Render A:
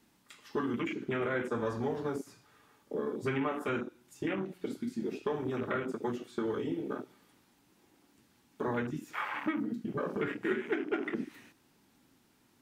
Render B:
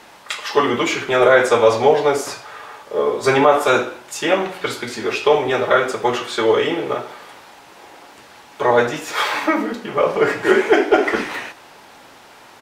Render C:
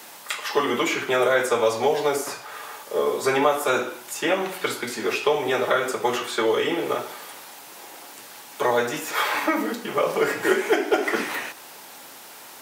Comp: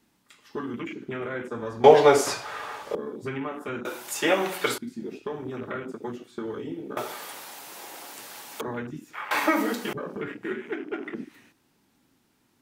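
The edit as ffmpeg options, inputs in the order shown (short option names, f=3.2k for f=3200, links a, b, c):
-filter_complex "[2:a]asplit=3[a][b][c];[0:a]asplit=5[d][e][f][g][h];[d]atrim=end=1.842[i];[1:a]atrim=start=1.838:end=2.952[j];[e]atrim=start=2.948:end=3.852[k];[a]atrim=start=3.848:end=4.782[l];[f]atrim=start=4.778:end=6.972[m];[b]atrim=start=6.968:end=8.612[n];[g]atrim=start=8.608:end=9.312[o];[c]atrim=start=9.308:end=9.932[p];[h]atrim=start=9.928[q];[i][j]acrossfade=d=0.004:c1=hsin:c2=hsin[r];[r][k]acrossfade=d=0.004:c1=hsin:c2=hsin[s];[s][l]acrossfade=d=0.004:c1=hsin:c2=hsin[t];[t][m]acrossfade=d=0.004:c1=hsin:c2=hsin[u];[u][n]acrossfade=d=0.004:c1=hsin:c2=hsin[v];[v][o]acrossfade=d=0.004:c1=hsin:c2=hsin[w];[w][p]acrossfade=d=0.004:c1=hsin:c2=hsin[x];[x][q]acrossfade=d=0.004:c1=hsin:c2=hsin"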